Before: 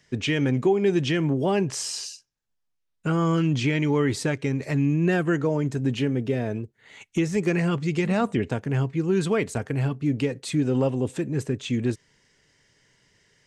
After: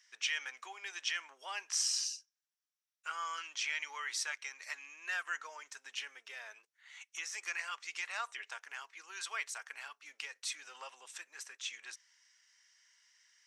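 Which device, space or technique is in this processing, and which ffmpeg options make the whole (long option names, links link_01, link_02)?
headphones lying on a table: -af "highpass=frequency=1100:width=0.5412,highpass=frequency=1100:width=1.3066,equalizer=frequency=5700:width_type=o:width=0.23:gain=9.5,volume=-6dB"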